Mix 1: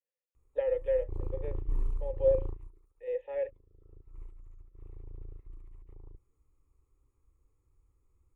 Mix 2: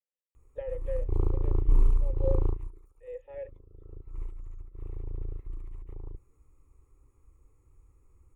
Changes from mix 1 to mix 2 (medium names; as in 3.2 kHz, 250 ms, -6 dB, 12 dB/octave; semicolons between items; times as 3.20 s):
speech -7.0 dB; background +9.5 dB